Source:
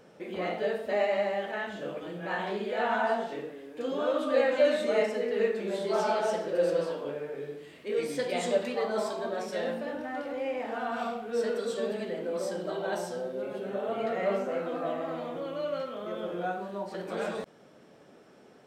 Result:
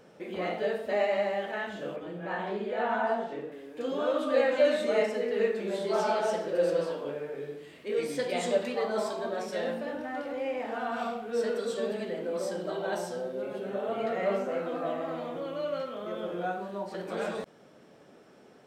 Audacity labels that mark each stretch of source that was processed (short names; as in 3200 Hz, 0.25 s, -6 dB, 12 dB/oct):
1.960000	3.520000	high shelf 2600 Hz -9 dB